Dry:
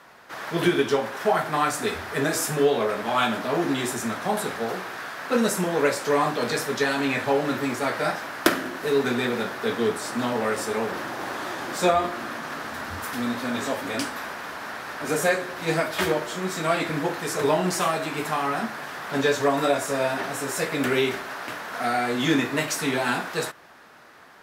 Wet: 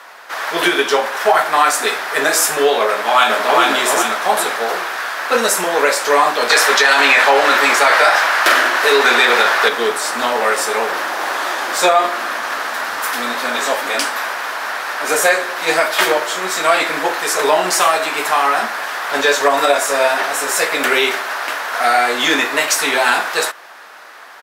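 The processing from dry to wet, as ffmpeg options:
-filter_complex "[0:a]asplit=2[a][b];[b]afade=t=in:st=2.88:d=0.01,afade=t=out:st=3.61:d=0.01,aecho=0:1:410|820|1230|1640|2050:0.794328|0.317731|0.127093|0.050837|0.0203348[c];[a][c]amix=inputs=2:normalize=0,asettb=1/sr,asplit=3[d][e][f];[d]atrim=end=6.504[g];[e]atrim=start=6.5:end=9.69,asetpts=PTS-STARTPTS,afade=t=in:d=0.004:c=qsin,afade=t=out:st=3.186:d=0.004:c=qsin,asplit=2[h][i];[i]highpass=f=720:p=1,volume=14dB,asoftclip=type=tanh:threshold=-6dB[j];[h][j]amix=inputs=2:normalize=0,lowpass=f=5.7k:p=1,volume=-6dB[k];[f]atrim=start=9.686[l];[g][k]acrossfade=d=0.004:c1=hsin:c2=qsin[m];[m][l]acrossfade=d=0.004:c1=qsin:c2=hsin,highpass=600,alimiter=level_in=13.5dB:limit=-1dB:release=50:level=0:latency=1,volume=-1dB"

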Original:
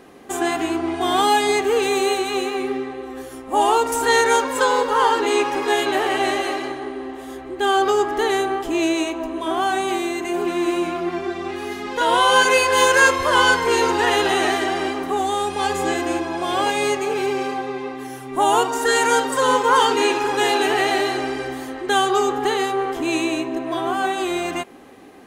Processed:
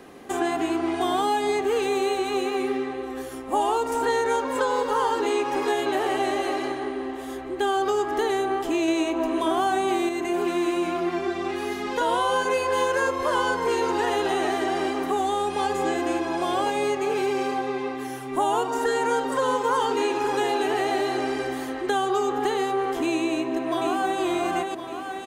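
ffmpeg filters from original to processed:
-filter_complex "[0:a]asplit=2[a][b];[b]afade=t=in:st=23.28:d=0.01,afade=t=out:st=24.21:d=0.01,aecho=0:1:530|1060|1590|2120|2650|3180:0.562341|0.253054|0.113874|0.0512434|0.0230595|0.0103768[c];[a][c]amix=inputs=2:normalize=0,asplit=3[d][e][f];[d]atrim=end=8.882[g];[e]atrim=start=8.878:end=10.092,asetpts=PTS-STARTPTS,volume=5dB[h];[f]atrim=start=10.088[i];[g][h]acrossfade=d=0.004:c1=hsin:c2=hsin[j];[j][i]acrossfade=d=0.004:c1=hsin:c2=hsin,acrossover=split=170|1100|4600[k][l][m][n];[k]acompressor=threshold=-47dB:ratio=4[o];[l]acompressor=threshold=-22dB:ratio=4[p];[m]acompressor=threshold=-35dB:ratio=4[q];[n]acompressor=threshold=-44dB:ratio=4[r];[o][p][q][r]amix=inputs=4:normalize=0"

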